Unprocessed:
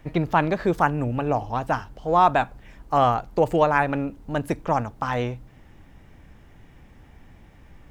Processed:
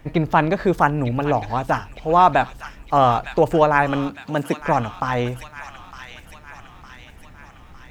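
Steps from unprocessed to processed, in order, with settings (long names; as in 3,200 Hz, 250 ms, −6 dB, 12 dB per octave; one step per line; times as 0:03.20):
0:04.07–0:04.60: high-pass filter 65 Hz → 190 Hz 24 dB per octave
delay with a high-pass on its return 908 ms, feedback 55%, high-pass 2,100 Hz, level −5 dB
level +3.5 dB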